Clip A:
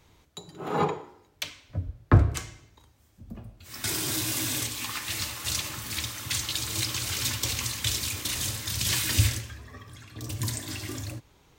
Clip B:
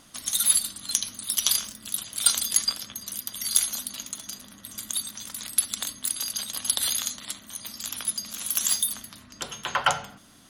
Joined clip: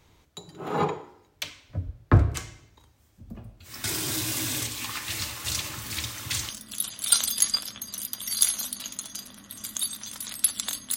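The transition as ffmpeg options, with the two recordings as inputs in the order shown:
-filter_complex "[0:a]apad=whole_dur=10.96,atrim=end=10.96,atrim=end=6.492[a];[1:a]atrim=start=1.628:end=6.1[b];[a][b]acrossfade=d=0.004:c1=hsin:c2=hsin"

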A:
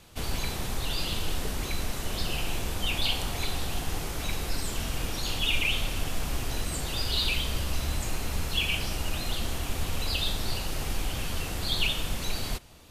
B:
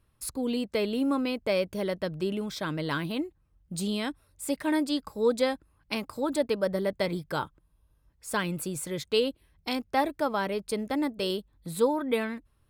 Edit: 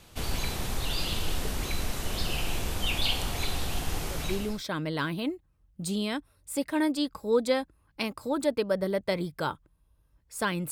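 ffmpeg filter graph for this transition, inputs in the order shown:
-filter_complex "[0:a]apad=whole_dur=10.71,atrim=end=10.71,atrim=end=4.63,asetpts=PTS-STARTPTS[a];[1:a]atrim=start=1.97:end=8.63,asetpts=PTS-STARTPTS[b];[a][b]acrossfade=d=0.58:c1=qsin:c2=qsin"

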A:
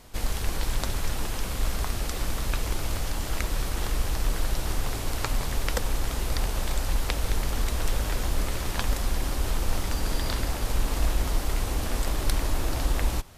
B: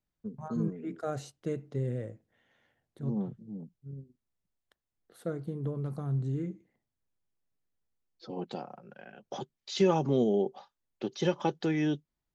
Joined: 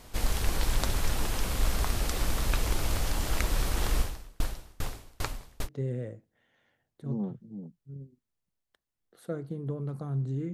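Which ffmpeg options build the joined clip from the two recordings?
-filter_complex "[0:a]asettb=1/sr,asplit=3[a][b][c];[a]atrim=end=4.004[d];[b]atrim=start=4:end=5.69,asetpts=PTS-STARTPTS,afade=t=in:d=0.004:c=qsin,afade=t=out:st=1.686:d=0.004:c=qsin,aeval=exprs='val(0)*pow(10,-35*if(lt(mod(2.5*n/s,1),2*abs(2.5)/1000),1-mod(2.5*n/s,1)/(2*abs(2.5)/1000),(mod(2.5*n/s,1)-2*abs(2.5)/1000)/(1-2*abs(2.5)/1000))/20)':c=same[e];[c]atrim=start=5.686[f];[d][e]acrossfade=d=0.004:c1=hsin:c2=qsin[g];[g][f]acrossfade=d=0.004:c1=qsin:c2=hsin,apad=whole_dur=10.53,atrim=end=10.53,atrim=end=5.69,asetpts=PTS-STARTPTS[h];[1:a]atrim=start=1.6:end=6.5,asetpts=PTS-STARTPTS[i];[h][i]acrossfade=d=0.06:c1=tri:c2=tri"

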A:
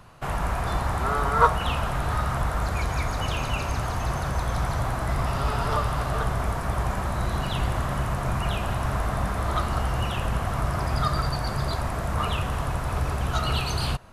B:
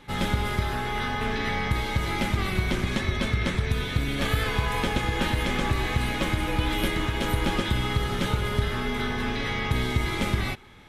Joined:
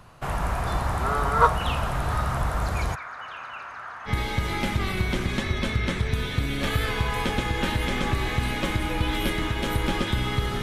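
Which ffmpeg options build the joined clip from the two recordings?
-filter_complex "[0:a]asplit=3[a][b][c];[a]afade=t=out:st=2.94:d=0.02[d];[b]bandpass=f=1.5k:t=q:w=2.5:csg=0,afade=t=in:st=2.94:d=0.02,afade=t=out:st=4.11:d=0.02[e];[c]afade=t=in:st=4.11:d=0.02[f];[d][e][f]amix=inputs=3:normalize=0,apad=whole_dur=10.62,atrim=end=10.62,atrim=end=4.11,asetpts=PTS-STARTPTS[g];[1:a]atrim=start=1.63:end=8.2,asetpts=PTS-STARTPTS[h];[g][h]acrossfade=d=0.06:c1=tri:c2=tri"

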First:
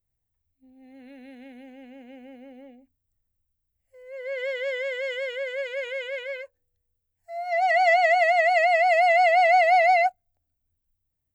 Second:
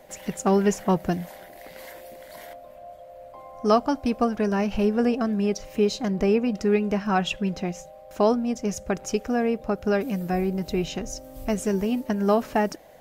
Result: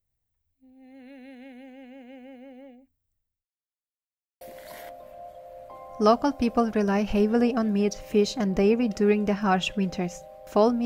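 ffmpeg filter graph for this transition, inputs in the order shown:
-filter_complex "[0:a]apad=whole_dur=10.85,atrim=end=10.85,asplit=2[a][b];[a]atrim=end=3.46,asetpts=PTS-STARTPTS,afade=t=out:st=2.92:d=0.54:c=qsin[c];[b]atrim=start=3.46:end=4.41,asetpts=PTS-STARTPTS,volume=0[d];[1:a]atrim=start=2.05:end=8.49,asetpts=PTS-STARTPTS,afade=t=in:d=0.004:c=hsin[e];[c][d][e]concat=n=3:v=0:a=1"

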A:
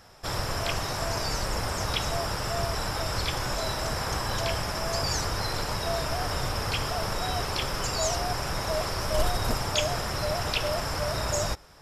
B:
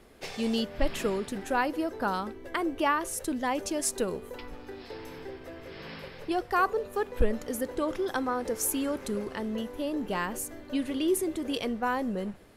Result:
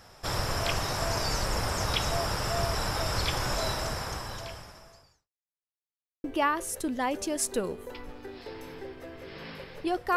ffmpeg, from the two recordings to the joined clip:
-filter_complex "[0:a]apad=whole_dur=10.16,atrim=end=10.16,asplit=2[a][b];[a]atrim=end=5.3,asetpts=PTS-STARTPTS,afade=t=out:st=3.66:d=1.64:c=qua[c];[b]atrim=start=5.3:end=6.24,asetpts=PTS-STARTPTS,volume=0[d];[1:a]atrim=start=2.68:end=6.6,asetpts=PTS-STARTPTS,afade=t=in:d=0.004:c=hsin[e];[c][d][e]concat=n=3:v=0:a=1"

